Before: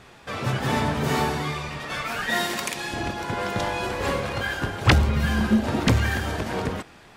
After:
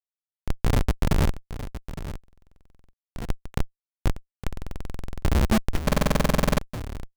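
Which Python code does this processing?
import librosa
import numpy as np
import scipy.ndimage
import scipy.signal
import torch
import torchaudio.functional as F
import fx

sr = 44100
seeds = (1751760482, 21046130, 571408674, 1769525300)

y = fx.schmitt(x, sr, flips_db=-15.5)
y = y + 10.0 ** (-13.0 / 20.0) * np.pad(y, (int(862 * sr / 1000.0), 0))[:len(y)]
y = fx.buffer_glitch(y, sr, at_s=(2.19, 4.48, 5.84), block=2048, repeats=15)
y = y * 10.0 ** (6.5 / 20.0)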